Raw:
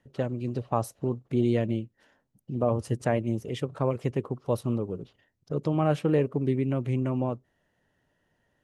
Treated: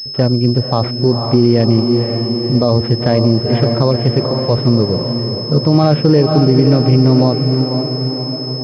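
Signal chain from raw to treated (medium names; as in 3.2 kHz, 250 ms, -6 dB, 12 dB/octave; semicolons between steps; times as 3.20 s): harmonic-percussive split harmonic +6 dB; echo that smears into a reverb 508 ms, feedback 59%, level -9 dB; loudness maximiser +14 dB; class-D stage that switches slowly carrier 5.2 kHz; trim -1 dB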